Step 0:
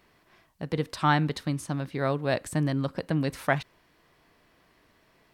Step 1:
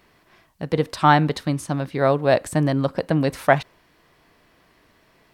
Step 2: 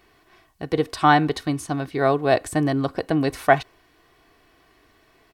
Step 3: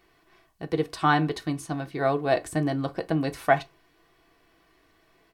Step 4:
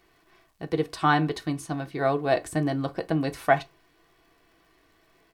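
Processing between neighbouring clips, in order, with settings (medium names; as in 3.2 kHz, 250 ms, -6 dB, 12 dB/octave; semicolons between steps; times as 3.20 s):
dynamic bell 650 Hz, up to +6 dB, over -38 dBFS, Q 0.92; trim +5 dB
comb 2.7 ms, depth 51%; trim -1 dB
reverberation RT60 0.20 s, pre-delay 6 ms, DRR 8 dB; trim -5.5 dB
crackle 170 per s -57 dBFS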